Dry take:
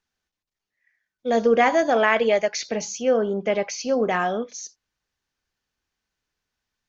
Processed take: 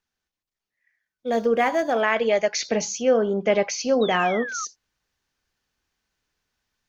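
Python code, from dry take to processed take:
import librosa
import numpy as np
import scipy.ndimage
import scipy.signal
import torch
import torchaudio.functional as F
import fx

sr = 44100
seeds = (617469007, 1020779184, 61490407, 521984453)

y = fx.median_filter(x, sr, points=5, at=(1.27, 2.01))
y = fx.spec_paint(y, sr, seeds[0], shape='fall', start_s=4.01, length_s=0.64, low_hz=1200.0, high_hz=3900.0, level_db=-36.0)
y = fx.rider(y, sr, range_db=4, speed_s=0.5)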